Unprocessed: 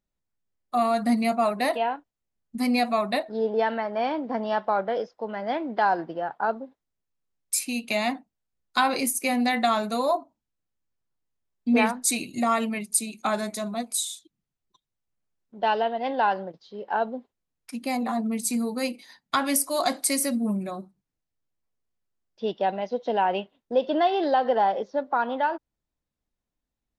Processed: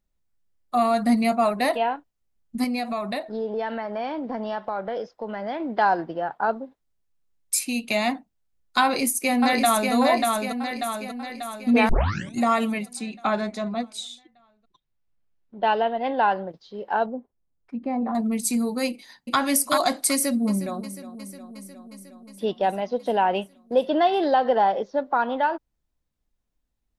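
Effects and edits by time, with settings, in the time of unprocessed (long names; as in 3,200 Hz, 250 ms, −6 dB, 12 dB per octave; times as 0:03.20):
0:02.64–0:05.60: downward compressor 2.5 to 1, threshold −29 dBFS
0:08.83–0:09.93: delay throw 590 ms, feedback 55%, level −3 dB
0:11.89: tape start 0.47 s
0:12.93–0:16.49: low-pass filter 3,800 Hz
0:17.06–0:18.15: Bessel low-pass filter 870 Hz
0:18.89–0:19.39: delay throw 380 ms, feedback 15%, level −1.5 dB
0:20.11–0:20.79: delay throw 360 ms, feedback 75%, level −14.5 dB
whole clip: low-shelf EQ 68 Hz +9.5 dB; level +2 dB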